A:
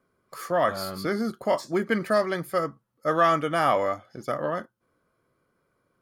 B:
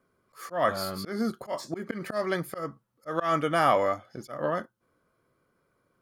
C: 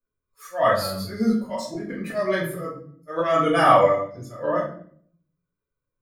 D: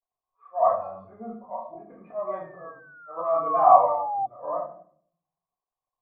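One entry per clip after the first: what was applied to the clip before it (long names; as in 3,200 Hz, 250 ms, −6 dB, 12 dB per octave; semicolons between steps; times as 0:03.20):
volume swells 168 ms
spectral dynamics exaggerated over time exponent 1.5; rectangular room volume 75 cubic metres, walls mixed, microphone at 1.8 metres
log-companded quantiser 8 bits; sound drawn into the spectrogram fall, 0:02.30–0:04.26, 770–2,000 Hz −28 dBFS; formant resonators in series a; level +8 dB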